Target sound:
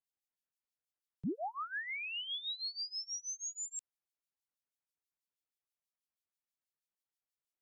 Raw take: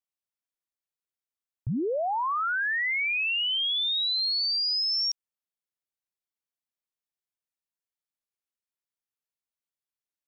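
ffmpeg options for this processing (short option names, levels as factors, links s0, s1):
-filter_complex "[0:a]acrossover=split=180|410|1800[s0][s1][s2][s3];[s0]acompressor=threshold=0.0141:ratio=4[s4];[s1]acompressor=threshold=0.00794:ratio=4[s5];[s2]acompressor=threshold=0.00708:ratio=4[s6];[s3]acompressor=threshold=0.00794:ratio=4[s7];[s4][s5][s6][s7]amix=inputs=4:normalize=0,acrossover=split=1800[s8][s9];[s8]aeval=exprs='val(0)*(1-1/2+1/2*cos(2*PI*4.6*n/s))':c=same[s10];[s9]aeval=exprs='val(0)*(1-1/2-1/2*cos(2*PI*4.6*n/s))':c=same[s11];[s10][s11]amix=inputs=2:normalize=0,asetrate=59535,aresample=44100,volume=1.12"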